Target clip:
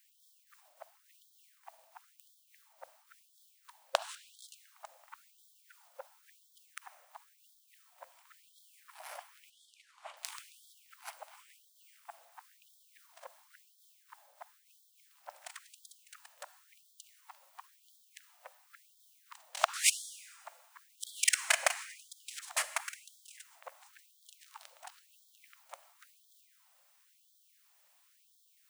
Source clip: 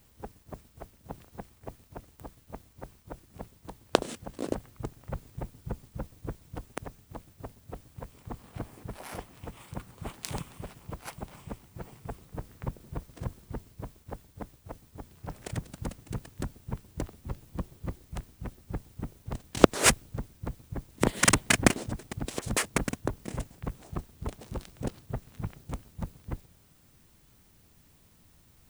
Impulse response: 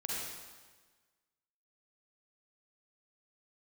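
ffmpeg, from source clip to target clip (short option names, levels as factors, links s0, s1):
-filter_complex "[0:a]asettb=1/sr,asplit=3[s0][s1][s2];[s0]atrim=end=9.504[s3];[s1]atrim=start=9.5:end=10.17,asetpts=PTS-STARTPTS,afade=t=in:d=0.004:c=qsin,afade=t=out:st=0.666:d=0.004:c=qsin,lowpass=6600[s4];[s2]atrim=start=10.166[s5];[s3][s4]acrossfade=d=0.004:c1=hsin:c2=qsin[s6];[s6][s5]acrossfade=d=0.004:c1=qsin:c2=hsin,asplit=2[s7][s8];[1:a]atrim=start_sample=2205[s9];[s8][s9]afir=irnorm=-1:irlink=0,volume=0.211[s10];[s7][s10]amix=inputs=2:normalize=0,afftfilt=real='re*gte(b*sr/1024,510*pow(3200/510,0.5+0.5*sin(2*PI*0.96*pts/sr)))':imag='im*gte(b*sr/1024,510*pow(3200/510,0.5+0.5*sin(2*PI*0.96*pts/sr)))':win_size=1024:overlap=0.75,volume=0.562"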